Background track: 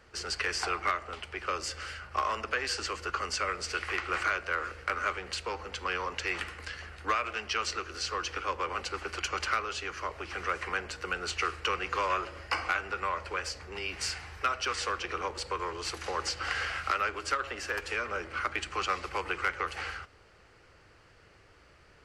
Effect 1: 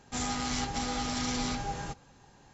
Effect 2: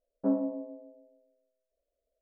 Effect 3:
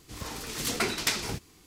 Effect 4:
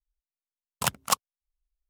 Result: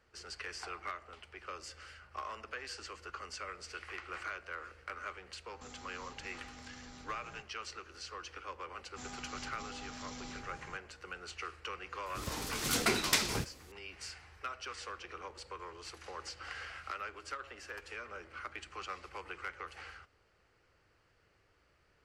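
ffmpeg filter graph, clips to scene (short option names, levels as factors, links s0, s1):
-filter_complex "[1:a]asplit=2[s0][s1];[0:a]volume=0.251[s2];[s0]acompressor=threshold=0.0141:ratio=6:attack=3.2:release=140:knee=1:detection=peak,atrim=end=2.53,asetpts=PTS-STARTPTS,volume=0.251,afade=t=in:d=0.004:c=hsin,afade=t=out:st=2.526:d=0.004:c=hsin,adelay=242109S[s3];[s1]atrim=end=2.53,asetpts=PTS-STARTPTS,volume=0.188,afade=t=in:d=0.004:c=hsin,afade=t=out:st=2.526:d=0.004:c=hsin,adelay=8840[s4];[3:a]atrim=end=1.66,asetpts=PTS-STARTPTS,volume=0.841,afade=t=in:d=0.004:c=hsin,afade=t=out:st=1.656:d=0.004:c=hsin,adelay=12060[s5];[s2][s3][s4][s5]amix=inputs=4:normalize=0"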